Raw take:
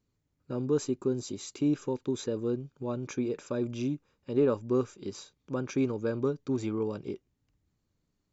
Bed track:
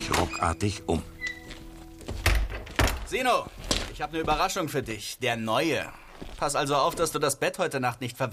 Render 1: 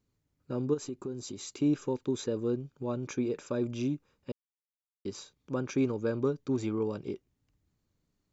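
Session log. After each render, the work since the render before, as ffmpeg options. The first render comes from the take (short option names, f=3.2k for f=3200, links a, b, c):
-filter_complex "[0:a]asplit=3[a][b][c];[a]afade=t=out:st=0.73:d=0.02[d];[b]acompressor=threshold=-37dB:ratio=2.5:attack=3.2:release=140:knee=1:detection=peak,afade=t=in:st=0.73:d=0.02,afade=t=out:st=1.48:d=0.02[e];[c]afade=t=in:st=1.48:d=0.02[f];[d][e][f]amix=inputs=3:normalize=0,asplit=3[g][h][i];[g]atrim=end=4.32,asetpts=PTS-STARTPTS,afade=t=out:st=4.316:d=0.004:c=hsin[j];[h]atrim=start=4.32:end=5.05,asetpts=PTS-STARTPTS,volume=0[k];[i]atrim=start=5.05,asetpts=PTS-STARTPTS,afade=t=in:d=0.004:c=hsin[l];[j][k][l]concat=n=3:v=0:a=1"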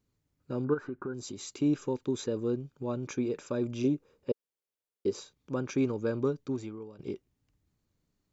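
-filter_complex "[0:a]asettb=1/sr,asplit=3[a][b][c];[a]atrim=end=0.644[d];[b]atrim=start=0.64:end=1.14,asetpts=PTS-STARTPTS,afade=t=in:d=0.004:c=qsin,afade=t=out:st=0.496:d=0.004:c=qsin,lowpass=f=1.5k:t=q:w=9.2[e];[c]atrim=start=1.136[f];[d][e]acrossfade=d=0.004:c1=hsin:c2=qsin[g];[g][f]acrossfade=d=0.004:c1=qsin:c2=hsin,asettb=1/sr,asplit=3[h][i][j];[h]atrim=end=3.844[k];[i]atrim=start=3.84:end=5.2,asetpts=PTS-STARTPTS,afade=t=in:d=0.004:c=qsin,afade=t=out:st=1.356:d=0.004:c=qsin,equalizer=f=450:w=1.6:g=12.5[l];[j]atrim=start=5.196[m];[k][l]acrossfade=d=0.004:c1=hsin:c2=qsin[n];[n][m]acrossfade=d=0.004:c1=qsin:c2=hsin,asplit=2[o][p];[o]atrim=end=6.99,asetpts=PTS-STARTPTS,afade=t=out:st=6.41:d=0.58:c=qua:silence=0.16788[q];[p]atrim=start=6.99,asetpts=PTS-STARTPTS,afade=t=in:d=0.004:c=hsin:silence=0.16788[r];[q][r]concat=n=2:v=0:a=1"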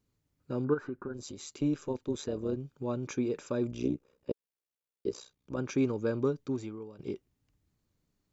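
-filter_complex "[0:a]asettb=1/sr,asplit=3[a][b][c];[a]atrim=end=0.964[d];[b]atrim=start=0.96:end=2.57,asetpts=PTS-STARTPTS,afade=t=in:d=0.004:c=qsin,afade=t=out:st=1.606:d=0.004:c=qsin,tremolo=f=150:d=0.571[e];[c]atrim=start=2.566[f];[d][e]acrossfade=d=0.004:c1=hsin:c2=qsin[g];[g][f]acrossfade=d=0.004:c1=qsin:c2=hsin,asplit=3[h][i][j];[h]afade=t=out:st=3.7:d=0.02[k];[i]tremolo=f=62:d=0.857,afade=t=in:st=3.7:d=0.02,afade=t=out:st=5.57:d=0.02[l];[j]afade=t=in:st=5.57:d=0.02[m];[k][l][m]amix=inputs=3:normalize=0"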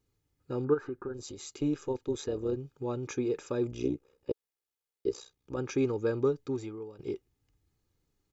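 -af "aecho=1:1:2.4:0.44"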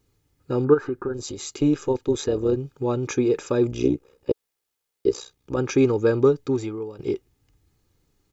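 -af "volume=10dB"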